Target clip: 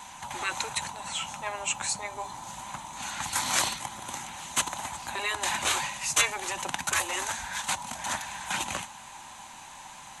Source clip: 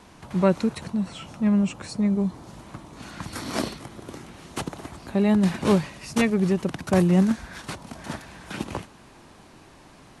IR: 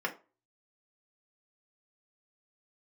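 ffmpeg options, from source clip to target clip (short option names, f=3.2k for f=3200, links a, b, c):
-af "flanger=delay=0:depth=6.3:regen=-80:speed=0.24:shape=sinusoidal,superequalizer=6b=0.501:7b=0.355:9b=3.16:14b=0.562:15b=1.78,afftfilt=real='re*lt(hypot(re,im),0.141)':imag='im*lt(hypot(re,im),0.141)':win_size=1024:overlap=0.75,tiltshelf=f=970:g=-8.5,volume=5.5dB"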